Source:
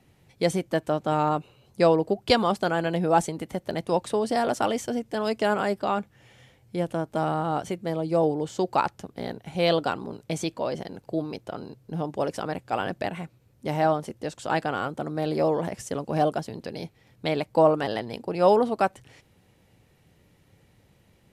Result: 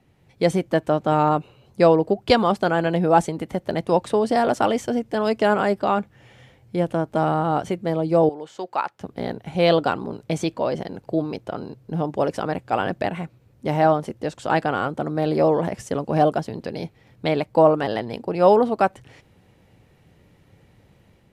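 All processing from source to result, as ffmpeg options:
-filter_complex "[0:a]asettb=1/sr,asplit=3[a][b][c];[a]atrim=end=8.294[d];[b]atrim=start=8.29:end=9.01,asetpts=PTS-STARTPTS,afade=t=in:d=0.004:c=qsin,afade=t=out:st=0.716:d=0.004:c=qsin,highpass=f=1.4k:p=1,highshelf=f=3.3k:g=-9[e];[c]atrim=start=9.006[f];[d][e]acrossfade=d=0.004:c1=hsin:c2=qsin[g];[g][f]acrossfade=d=0.004:c1=qsin:c2=hsin,highshelf=f=4k:g=-8,dynaudnorm=f=130:g=5:m=5.5dB"

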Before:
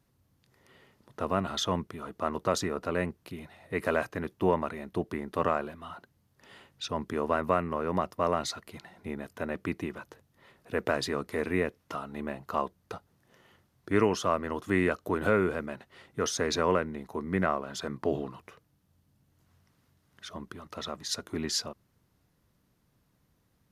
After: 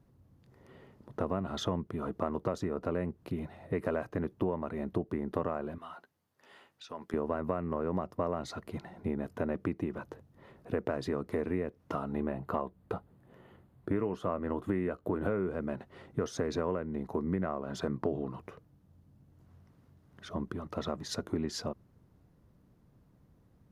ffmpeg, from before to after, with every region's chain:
-filter_complex "[0:a]asettb=1/sr,asplit=3[a][b][c];[a]atrim=end=5.784[d];[b]atrim=start=5.78:end=7.14,asetpts=PTS-STARTPTS,afade=t=in:d=0.004:c=qsin,afade=t=out:st=1.356:d=0.004:c=qsin,highpass=f=1.5k:p=1,acompressor=threshold=-41dB:ratio=5:attack=3.2:release=140:knee=1:detection=peak,asplit=2[e][f];[f]adelay=12,volume=-9dB[g];[e][g]amix=inputs=2:normalize=0,atrim=end_sample=59976[h];[c]atrim=start=7.136[i];[d][h]acrossfade=d=0.004:c1=hsin:c2=qsin[j];[j][i]acrossfade=d=0.004:c1=qsin:c2=hsin,asettb=1/sr,asplit=3[k][l][m];[k]atrim=end=12.134[n];[l]atrim=start=12.13:end=15.48,asetpts=PTS-STARTPTS,afade=t=in:d=0.004:c=qsin,afade=t=out:st=3.346:d=0.004:c=qsin,equalizer=f=5.7k:w=2.4:g=-10.5,asplit=2[o][p];[p]adelay=16,volume=-13.5dB[q];[o][q]amix=inputs=2:normalize=0,atrim=end_sample=147735[r];[m]atrim=start=15.476[s];[n][r]acrossfade=d=0.004:c1=hsin:c2=qsin[t];[t][s]acrossfade=d=0.004:c1=qsin:c2=hsin,tiltshelf=f=1.3k:g=8,acompressor=threshold=-29dB:ratio=6"

